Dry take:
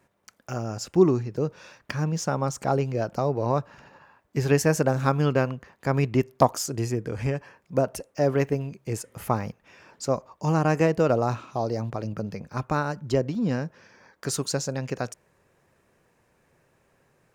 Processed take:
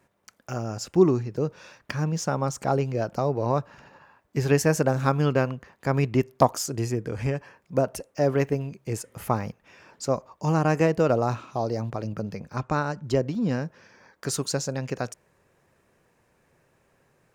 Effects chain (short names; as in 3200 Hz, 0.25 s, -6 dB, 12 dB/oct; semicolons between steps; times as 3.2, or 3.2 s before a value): 12.56–13.03 steep low-pass 8800 Hz 96 dB/oct